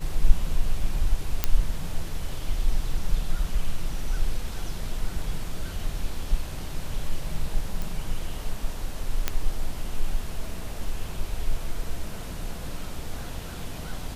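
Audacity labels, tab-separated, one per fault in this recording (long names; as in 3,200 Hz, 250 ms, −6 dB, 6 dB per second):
1.440000	1.440000	click −6 dBFS
7.820000	7.820000	click
9.280000	9.280000	click −8 dBFS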